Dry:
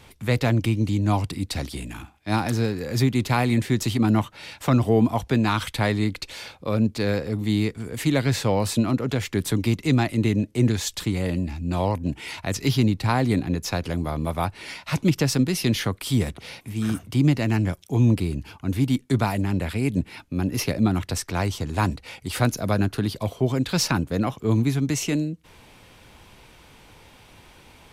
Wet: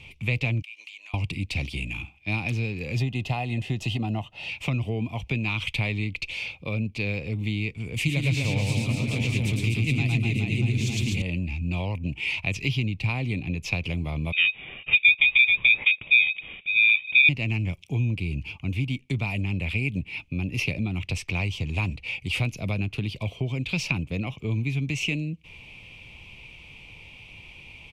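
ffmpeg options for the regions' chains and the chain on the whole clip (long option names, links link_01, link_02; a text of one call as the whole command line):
ffmpeg -i in.wav -filter_complex "[0:a]asettb=1/sr,asplit=3[link_01][link_02][link_03];[link_01]atrim=end=0.624[link_04];[link_02]atrim=start=0.62:end=1.14,asetpts=PTS-STARTPTS,afade=type=in:duration=0.004:curve=qsin,afade=type=out:start_time=0.516:duration=0.004:curve=qsin,highpass=frequency=970:width=0.5412,highpass=frequency=970:width=1.3066,acompressor=threshold=-44dB:ratio=12:attack=3.2:release=140:knee=1:detection=peak[link_05];[link_03]atrim=start=1.136[link_06];[link_04][link_05]acrossfade=duration=0.004:curve1=hsin:curve2=qsin[link_07];[link_07][link_06]acrossfade=duration=0.004:curve1=qsin:curve2=hsin,asettb=1/sr,asplit=3[link_08][link_09][link_10];[link_08]atrim=end=2.964[link_11];[link_09]atrim=start=2.96:end=4.49,asetpts=PTS-STARTPTS,afade=type=in:duration=0.004:curve=qsin,afade=type=out:start_time=1.526:duration=0.004:curve=qsin,asuperstop=centerf=2300:order=4:qfactor=6.1,equalizer=frequency=720:width_type=o:width=0.54:gain=12.5[link_12];[link_10]atrim=start=4.486[link_13];[link_11][link_12]acrossfade=duration=0.004:curve1=hsin:curve2=qsin[link_14];[link_14][link_13]acrossfade=duration=0.004:curve1=qsin:curve2=hsin,asettb=1/sr,asplit=3[link_15][link_16][link_17];[link_15]atrim=end=7.964[link_18];[link_16]atrim=start=7.96:end=11.22,asetpts=PTS-STARTPTS,afade=type=in:duration=0.004:curve=qsin,afade=type=out:start_time=3.256:duration=0.004:curve=qsin,bass=frequency=250:gain=4,treble=frequency=4000:gain=8,aecho=1:1:110|247.5|419.4|634.2|902.8:0.794|0.631|0.501|0.398|0.316,atrim=end_sample=143766[link_19];[link_17]atrim=start=11.216[link_20];[link_18][link_19]acrossfade=duration=0.004:curve1=hsin:curve2=qsin[link_21];[link_21][link_20]acrossfade=duration=0.004:curve1=qsin:curve2=hsin,asettb=1/sr,asplit=3[link_22][link_23][link_24];[link_22]atrim=end=14.324[link_25];[link_23]atrim=start=14.32:end=17.29,asetpts=PTS-STARTPTS,afade=type=in:duration=0.004:curve=qsin,afade=type=out:start_time=2.966:duration=0.004:curve=qsin,lowpass=frequency=2700:width_type=q:width=0.5098,lowpass=frequency=2700:width_type=q:width=0.6013,lowpass=frequency=2700:width_type=q:width=0.9,lowpass=frequency=2700:width_type=q:width=2.563,afreqshift=-3200,aeval=exprs='val(0)*sin(2*PI*590*n/s)':channel_layout=same[link_26];[link_24]atrim=start=17.286[link_27];[link_25][link_26]acrossfade=duration=0.004:curve1=hsin:curve2=qsin[link_28];[link_28][link_27]acrossfade=duration=0.004:curve1=qsin:curve2=hsin,acompressor=threshold=-25dB:ratio=3,firequalizer=gain_entry='entry(150,0);entry(240,-7);entry(1100,-10);entry(1600,-19);entry(2400,12);entry(3900,-6);entry(13000,-18)':delay=0.05:min_phase=1,volume=2.5dB" out.wav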